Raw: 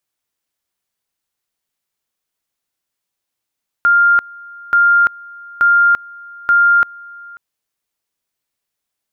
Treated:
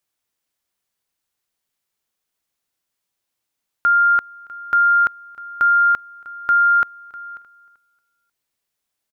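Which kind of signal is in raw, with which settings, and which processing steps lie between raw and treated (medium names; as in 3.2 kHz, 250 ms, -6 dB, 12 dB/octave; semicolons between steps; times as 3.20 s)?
two-level tone 1.4 kHz -7.5 dBFS, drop 24.5 dB, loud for 0.34 s, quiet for 0.54 s, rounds 4
peak limiter -11 dBFS; feedback delay 309 ms, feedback 35%, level -19 dB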